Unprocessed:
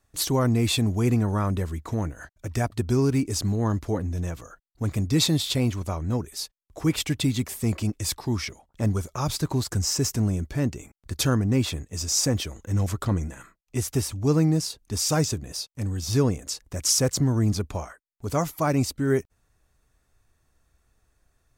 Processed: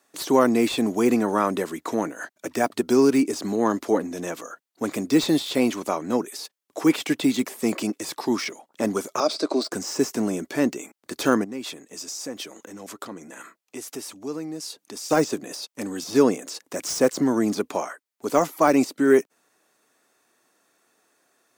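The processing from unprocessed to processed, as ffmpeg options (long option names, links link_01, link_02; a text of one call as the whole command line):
ffmpeg -i in.wav -filter_complex "[0:a]asettb=1/sr,asplit=3[link_01][link_02][link_03];[link_01]atrim=end=9.204[link_04];[link_02]atrim=start=9.2:end=9.72,asetpts=PTS-STARTPTS,afade=type=in:duration=0.004:curve=qsin,afade=type=out:start_time=0.516:duration=0.004:curve=qsin,highpass=frequency=250:width=0.5412,highpass=frequency=250:width=1.3066,equalizer=frequency=630:width_type=q:width=4:gain=9,equalizer=frequency=900:width_type=q:width=4:gain=-10,equalizer=frequency=1800:width_type=q:width=4:gain=-9,equalizer=frequency=3000:width_type=q:width=4:gain=-7,equalizer=frequency=4700:width_type=q:width=4:gain=6,equalizer=frequency=6800:width_type=q:width=4:gain=-9,lowpass=frequency=7800:width=0.5412,lowpass=frequency=7800:width=1.3066[link_05];[link_03]atrim=start=9.716[link_06];[link_04][link_05]acrossfade=duration=0.004:curve1=hsin:curve2=qsin[link_07];[link_07][link_06]acrossfade=duration=0.004:curve1=qsin:curve2=hsin,asettb=1/sr,asplit=3[link_08][link_09][link_10];[link_08]atrim=end=11.444[link_11];[link_09]atrim=start=11.44:end=15.11,asetpts=PTS-STARTPTS,afade=type=in:duration=0.004:curve=qsin,afade=type=out:start_time=3.666:duration=0.004:curve=qsin,acompressor=threshold=-45dB:ratio=2:attack=3.2:release=140:knee=1:detection=peak[link_12];[link_10]atrim=start=15.106[link_13];[link_11][link_12]acrossfade=duration=0.004:curve1=hsin:curve2=qsin[link_14];[link_14][link_13]acrossfade=duration=0.004:curve1=qsin:curve2=hsin,acontrast=63,highpass=frequency=250:width=0.5412,highpass=frequency=250:width=1.3066,deesser=0.65,volume=1.5dB" out.wav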